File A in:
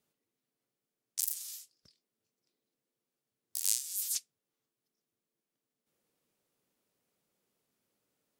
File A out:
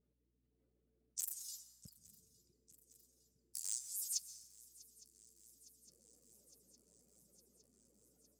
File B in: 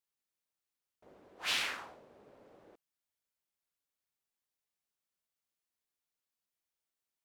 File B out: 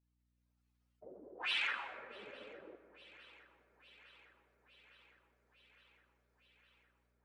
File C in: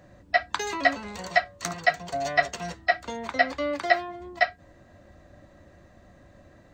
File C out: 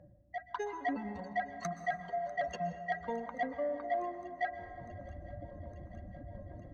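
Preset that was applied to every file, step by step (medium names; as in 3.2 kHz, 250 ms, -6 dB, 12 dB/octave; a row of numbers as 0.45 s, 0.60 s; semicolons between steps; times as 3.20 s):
spectral contrast enhancement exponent 2.4; low-pass 2.6 kHz 6 dB/octave; transient shaper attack +2 dB, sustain -7 dB; reverse; compression 10:1, threshold -37 dBFS; reverse; saturation -30.5 dBFS; level rider gain up to 8 dB; on a send: shuffle delay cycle 860 ms, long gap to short 3:1, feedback 71%, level -22 dB; on the sum: hum 60 Hz, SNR 32 dB; plate-style reverb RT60 2.2 s, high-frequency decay 0.35×, pre-delay 110 ms, DRR 10.5 dB; trim -2 dB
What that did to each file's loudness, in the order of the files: -9.0 LU, -4.5 LU, -12.5 LU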